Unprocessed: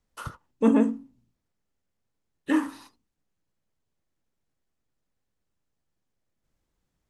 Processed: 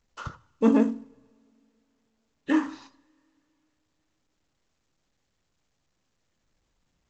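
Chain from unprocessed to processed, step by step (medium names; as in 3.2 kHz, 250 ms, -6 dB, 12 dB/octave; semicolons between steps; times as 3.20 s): two-slope reverb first 0.7 s, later 2.8 s, from -18 dB, DRR 18.5 dB; µ-law 128 kbps 16 kHz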